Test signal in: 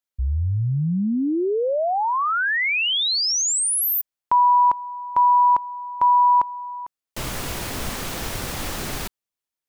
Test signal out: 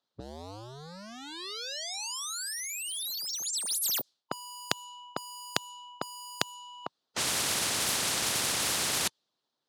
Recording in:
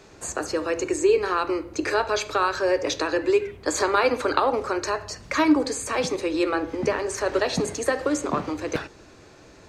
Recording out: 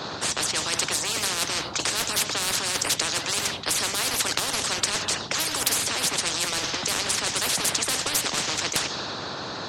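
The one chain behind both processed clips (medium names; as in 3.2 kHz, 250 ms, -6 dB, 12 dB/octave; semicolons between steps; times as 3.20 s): in parallel at -8 dB: crossover distortion -33.5 dBFS; on the sum: level-controlled noise filter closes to 1.5 kHz, open at -15 dBFS; high-pass 130 Hz 24 dB/octave; reverse; compression, threshold -26 dBFS; reverse; harmonic-percussive split harmonic -7 dB; resonant high shelf 3 kHz +10 dB, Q 3; spectrum-flattening compressor 10:1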